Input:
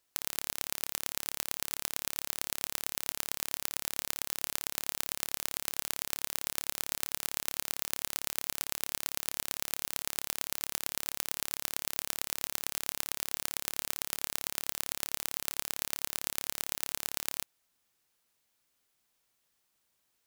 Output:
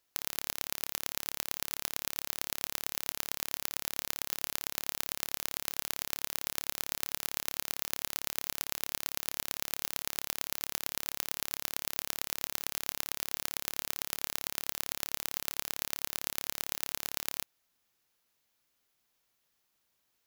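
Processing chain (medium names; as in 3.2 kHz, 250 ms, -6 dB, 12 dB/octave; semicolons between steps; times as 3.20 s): peaking EQ 8.6 kHz -7 dB 0.29 oct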